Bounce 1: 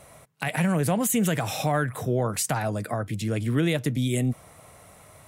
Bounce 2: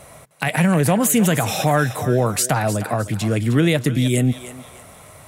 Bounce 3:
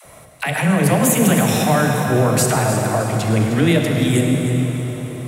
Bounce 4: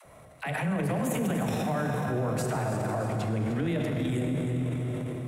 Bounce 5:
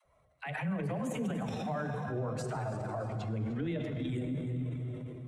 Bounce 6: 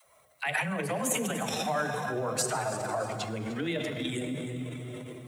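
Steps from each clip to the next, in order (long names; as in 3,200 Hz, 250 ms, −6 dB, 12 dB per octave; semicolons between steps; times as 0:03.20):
feedback echo with a high-pass in the loop 308 ms, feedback 36%, high-pass 570 Hz, level −11.5 dB; level +7 dB
all-pass dispersion lows, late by 57 ms, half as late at 410 Hz; on a send at −1.5 dB: convolution reverb RT60 4.8 s, pre-delay 32 ms
high-shelf EQ 2,800 Hz −10.5 dB; transient designer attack −4 dB, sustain +7 dB; downward compressor 3 to 1, threshold −20 dBFS, peak gain reduction 7.5 dB; level −7 dB
spectral dynamics exaggerated over time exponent 1.5; low-pass filter 7,100 Hz 12 dB per octave; level −3.5 dB
RIAA equalisation recording; level +8 dB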